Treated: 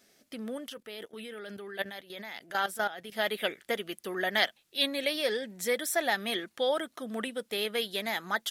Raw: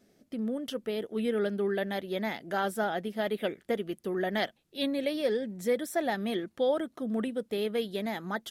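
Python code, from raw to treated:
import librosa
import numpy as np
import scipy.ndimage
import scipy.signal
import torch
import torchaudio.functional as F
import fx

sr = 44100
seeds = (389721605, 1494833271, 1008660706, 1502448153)

y = fx.tilt_shelf(x, sr, db=-9.0, hz=660.0)
y = fx.level_steps(y, sr, step_db=14, at=(0.68, 3.12))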